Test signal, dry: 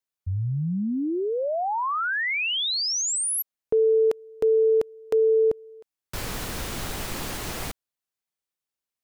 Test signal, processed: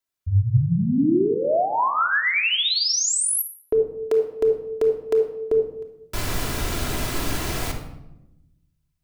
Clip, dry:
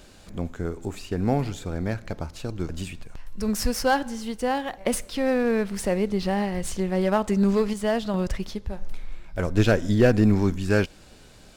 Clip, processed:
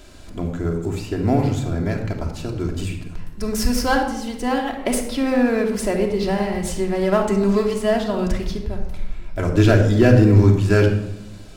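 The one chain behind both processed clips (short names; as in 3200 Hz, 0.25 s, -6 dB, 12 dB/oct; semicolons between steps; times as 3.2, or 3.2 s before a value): shoebox room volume 3200 m³, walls furnished, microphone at 3 m; gain +2 dB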